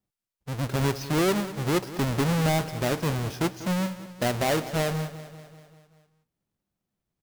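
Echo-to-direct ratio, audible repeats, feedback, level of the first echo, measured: -13.0 dB, 5, 58%, -15.0 dB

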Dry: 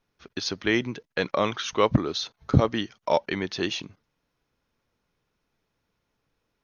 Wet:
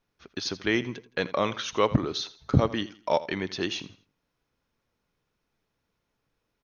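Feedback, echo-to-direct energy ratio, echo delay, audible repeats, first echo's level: 33%, -16.5 dB, 83 ms, 2, -17.0 dB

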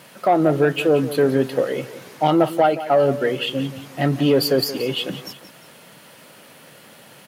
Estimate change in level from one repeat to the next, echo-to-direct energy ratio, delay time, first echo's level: -7.5 dB, -13.0 dB, 176 ms, -14.0 dB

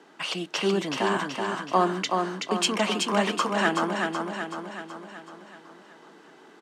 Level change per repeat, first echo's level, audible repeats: -5.0 dB, -4.0 dB, 6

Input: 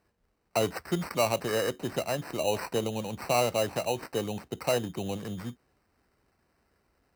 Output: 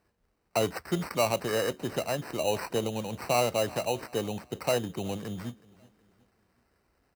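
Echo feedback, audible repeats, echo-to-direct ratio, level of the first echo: 41%, 2, -21.5 dB, -22.5 dB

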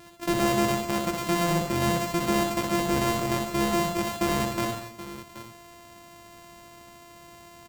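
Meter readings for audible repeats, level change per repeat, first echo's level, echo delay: 6, no regular repeats, -4.5 dB, 62 ms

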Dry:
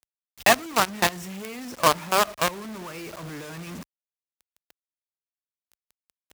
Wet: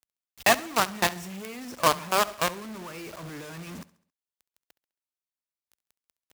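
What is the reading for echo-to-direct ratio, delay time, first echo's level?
-18.5 dB, 68 ms, -19.5 dB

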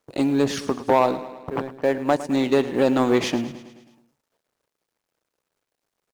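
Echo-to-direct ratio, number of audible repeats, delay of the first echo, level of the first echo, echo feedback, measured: -13.0 dB, 5, 107 ms, -15.0 dB, 59%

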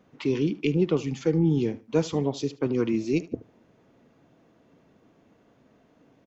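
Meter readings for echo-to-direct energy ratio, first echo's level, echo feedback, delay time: -19.0 dB, -19.0 dB, 24%, 75 ms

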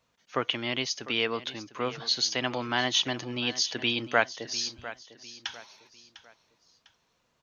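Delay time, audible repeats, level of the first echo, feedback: 701 ms, 3, -15.5 dB, 36%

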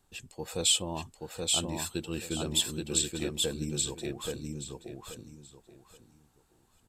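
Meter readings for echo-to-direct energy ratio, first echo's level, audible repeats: -2.5 dB, -3.0 dB, 3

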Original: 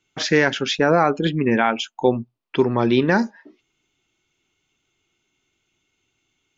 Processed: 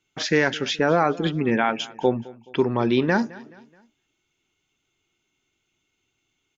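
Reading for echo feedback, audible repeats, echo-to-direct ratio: 43%, 2, -20.0 dB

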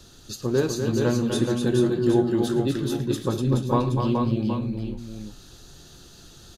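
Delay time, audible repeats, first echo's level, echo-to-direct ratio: 110 ms, 4, -16.5 dB, -1.5 dB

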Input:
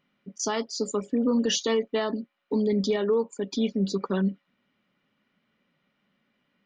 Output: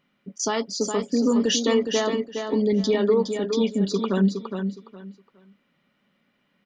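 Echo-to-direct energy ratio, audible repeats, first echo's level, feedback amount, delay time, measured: -6.5 dB, 3, -6.5 dB, 23%, 414 ms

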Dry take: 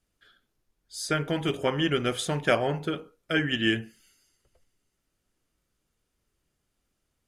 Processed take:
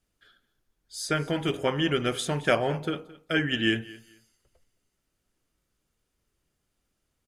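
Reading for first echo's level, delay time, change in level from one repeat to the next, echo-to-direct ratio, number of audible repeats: -20.0 dB, 218 ms, -13.5 dB, -20.0 dB, 2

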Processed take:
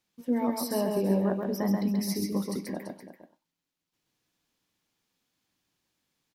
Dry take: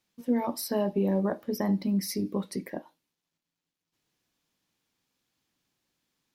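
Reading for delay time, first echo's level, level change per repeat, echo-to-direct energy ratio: 133 ms, -3.5 dB, no regular repeats, -2.5 dB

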